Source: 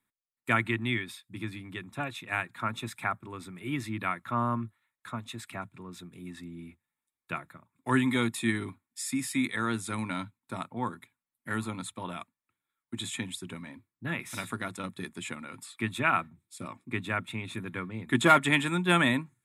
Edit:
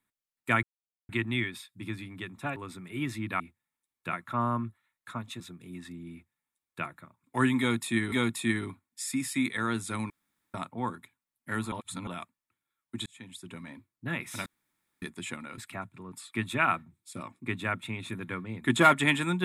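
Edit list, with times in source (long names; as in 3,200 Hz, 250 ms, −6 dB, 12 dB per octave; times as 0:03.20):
0:00.63: splice in silence 0.46 s
0:02.10–0:03.27: remove
0:05.38–0:05.92: move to 0:15.57
0:06.64–0:07.37: duplicate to 0:04.11
0:08.11–0:08.64: repeat, 2 plays
0:10.09–0:10.53: fill with room tone
0:11.71–0:12.06: reverse
0:13.05–0:13.70: fade in
0:14.45–0:15.01: fill with room tone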